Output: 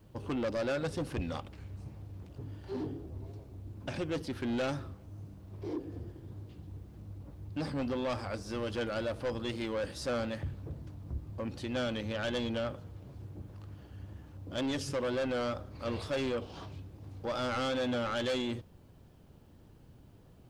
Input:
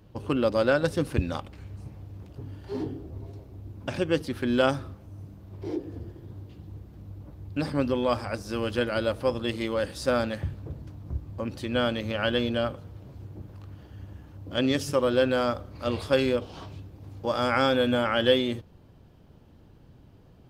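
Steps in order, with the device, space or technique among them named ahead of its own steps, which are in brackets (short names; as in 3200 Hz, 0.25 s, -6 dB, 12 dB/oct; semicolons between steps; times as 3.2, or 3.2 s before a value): compact cassette (soft clip -25.5 dBFS, distortion -8 dB; LPF 9700 Hz 12 dB/oct; wow and flutter; white noise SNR 42 dB); gain -3.5 dB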